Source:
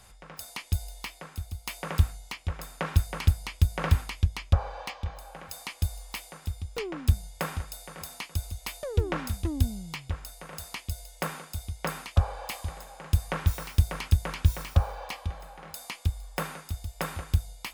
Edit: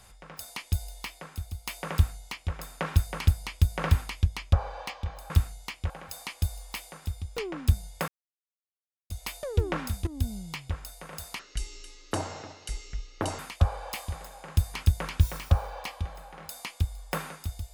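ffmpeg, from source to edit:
ffmpeg -i in.wav -filter_complex "[0:a]asplit=9[link_01][link_02][link_03][link_04][link_05][link_06][link_07][link_08][link_09];[link_01]atrim=end=5.302[link_10];[link_02]atrim=start=1.928:end=2.532[link_11];[link_03]atrim=start=5.298:end=7.48,asetpts=PTS-STARTPTS,afade=type=out:start_time=2.178:duration=0.004:curve=hsin[link_12];[link_04]atrim=start=7.48:end=8.5,asetpts=PTS-STARTPTS,volume=0[link_13];[link_05]atrim=start=8.5:end=9.47,asetpts=PTS-STARTPTS,afade=type=in:duration=0.004:curve=hsin,afade=type=out:start_time=0.966:duration=0.004:curve=hsin:silence=0.237137[link_14];[link_06]atrim=start=9.47:end=10.794,asetpts=PTS-STARTPTS,afade=type=in:duration=0.29:silence=0.237137[link_15];[link_07]atrim=start=10.79:end=11.95,asetpts=PTS-STARTPTS,asetrate=25578,aresample=44100[link_16];[link_08]atrim=start=11.946:end=13.302[link_17];[link_09]atrim=start=13.988[link_18];[link_10][link_11]acrossfade=duration=0.004:curve1=hsin:curve2=hsin[link_19];[link_12][link_13][link_14][link_15]concat=n=4:v=0:a=1[link_20];[link_19][link_20]acrossfade=duration=0.004:curve1=hsin:curve2=hsin[link_21];[link_21][link_16]acrossfade=duration=0.004:curve1=hsin:curve2=hsin[link_22];[link_22][link_17]acrossfade=duration=0.004:curve1=hsin:curve2=hsin[link_23];[link_23][link_18]acrossfade=duration=0.004:curve1=hsin:curve2=hsin" out.wav

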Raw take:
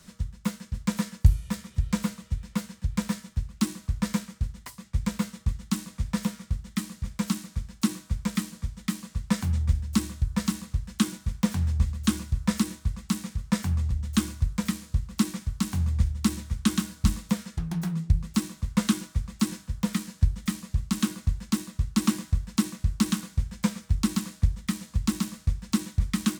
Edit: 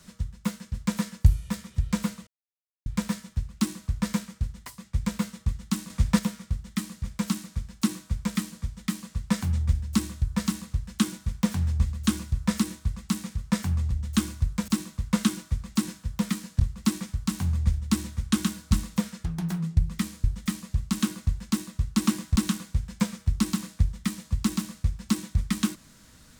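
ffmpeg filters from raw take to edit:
ffmpeg -i in.wav -filter_complex "[0:a]asplit=10[link_01][link_02][link_03][link_04][link_05][link_06][link_07][link_08][link_09][link_10];[link_01]atrim=end=2.27,asetpts=PTS-STARTPTS,afade=type=out:start_time=2.266:duration=0.004:curve=hsin[link_11];[link_02]atrim=start=2.27:end=2.86,asetpts=PTS-STARTPTS,volume=0[link_12];[link_03]atrim=start=2.86:end=5.902,asetpts=PTS-STARTPTS,afade=type=in:duration=0.004:curve=hsin[link_13];[link_04]atrim=start=5.898:end=6.192,asetpts=PTS-STARTPTS,volume=6.5dB[link_14];[link_05]atrim=start=6.188:end=14.682[link_15];[link_06]atrim=start=18.318:end=20.242[link_16];[link_07]atrim=start=14.928:end=18.322[link_17];[link_08]atrim=start=14.678:end=14.932[link_18];[link_09]atrim=start=20.238:end=22.362[link_19];[link_10]atrim=start=22.988[link_20];[link_11][link_12][link_13]concat=n=3:v=0:a=1[link_21];[link_21][link_14]acrossfade=duration=0.004:curve1=hsin:curve2=hsin[link_22];[link_22][link_15]acrossfade=duration=0.004:curve1=hsin:curve2=hsin[link_23];[link_23][link_16]acrossfade=duration=0.004:curve1=hsin:curve2=hsin[link_24];[link_24][link_17]acrossfade=duration=0.004:curve1=hsin:curve2=hsin[link_25];[link_25][link_18]acrossfade=duration=0.004:curve1=hsin:curve2=hsin[link_26];[link_26][link_19]acrossfade=duration=0.004:curve1=hsin:curve2=hsin[link_27];[link_27][link_20]acrossfade=duration=0.004:curve1=hsin:curve2=hsin" out.wav

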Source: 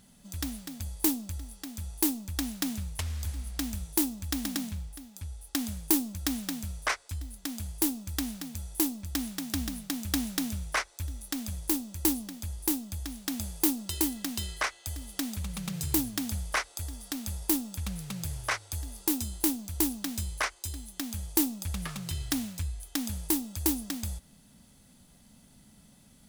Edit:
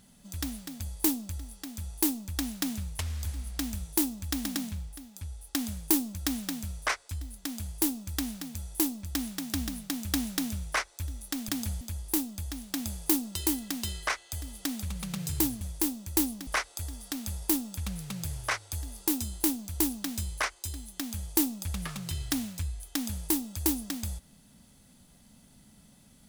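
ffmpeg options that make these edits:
ffmpeg -i in.wav -filter_complex "[0:a]asplit=5[link_01][link_02][link_03][link_04][link_05];[link_01]atrim=end=11.492[link_06];[link_02]atrim=start=16.148:end=16.472[link_07];[link_03]atrim=start=12.348:end=16.152[link_08];[link_04]atrim=start=11.488:end=12.352[link_09];[link_05]atrim=start=16.468[link_10];[link_06][link_07]acrossfade=duration=0.004:curve1=hsin:curve2=hsin[link_11];[link_11][link_08]acrossfade=duration=0.004:curve1=hsin:curve2=hsin[link_12];[link_12][link_09]acrossfade=duration=0.004:curve1=hsin:curve2=hsin[link_13];[link_13][link_10]acrossfade=duration=0.004:curve1=hsin:curve2=hsin" out.wav

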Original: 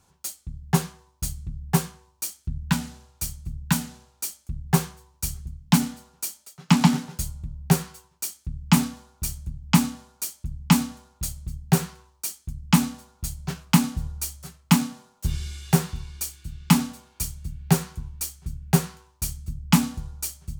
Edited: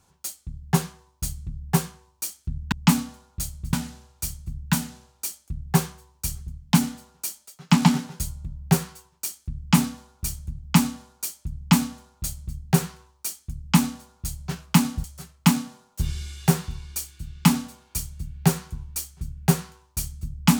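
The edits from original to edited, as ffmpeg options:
ffmpeg -i in.wav -filter_complex "[0:a]asplit=4[link_01][link_02][link_03][link_04];[link_01]atrim=end=2.722[link_05];[link_02]atrim=start=10.548:end=11.562[link_06];[link_03]atrim=start=2.718:end=14.032[link_07];[link_04]atrim=start=14.288[link_08];[link_05][link_06]acrossfade=duration=0.004:curve1=hsin:curve2=hsin[link_09];[link_09][link_07]acrossfade=duration=0.004:curve1=hsin:curve2=hsin[link_10];[link_10][link_08]acrossfade=duration=0.004:curve1=hsin:curve2=hsin" out.wav

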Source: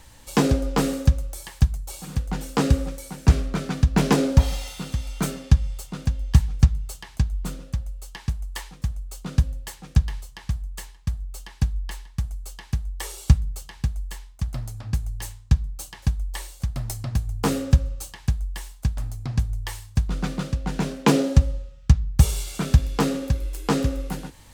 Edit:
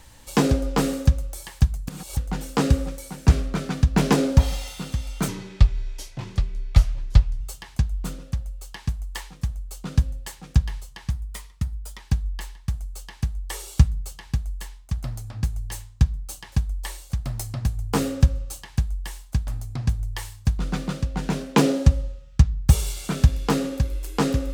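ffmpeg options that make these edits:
ffmpeg -i in.wav -filter_complex "[0:a]asplit=7[link_01][link_02][link_03][link_04][link_05][link_06][link_07];[link_01]atrim=end=1.882[link_08];[link_02]atrim=start=1.878:end=2.172,asetpts=PTS-STARTPTS,areverse[link_09];[link_03]atrim=start=2.168:end=5.284[link_10];[link_04]atrim=start=5.28:end=6.81,asetpts=PTS-STARTPTS,asetrate=31752,aresample=44100,atrim=end_sample=93712,asetpts=PTS-STARTPTS[link_11];[link_05]atrim=start=6.806:end=10.524[link_12];[link_06]atrim=start=10.52:end=11.5,asetpts=PTS-STARTPTS,asetrate=48951,aresample=44100,atrim=end_sample=38935,asetpts=PTS-STARTPTS[link_13];[link_07]atrim=start=11.496[link_14];[link_08][link_09]acrossfade=duration=0.004:curve1=hsin:curve2=hsin[link_15];[link_15][link_10]acrossfade=duration=0.004:curve1=hsin:curve2=hsin[link_16];[link_16][link_11]acrossfade=duration=0.004:curve1=hsin:curve2=hsin[link_17];[link_17][link_12]acrossfade=duration=0.004:curve1=hsin:curve2=hsin[link_18];[link_18][link_13]acrossfade=duration=0.004:curve1=hsin:curve2=hsin[link_19];[link_19][link_14]acrossfade=duration=0.004:curve1=hsin:curve2=hsin" out.wav

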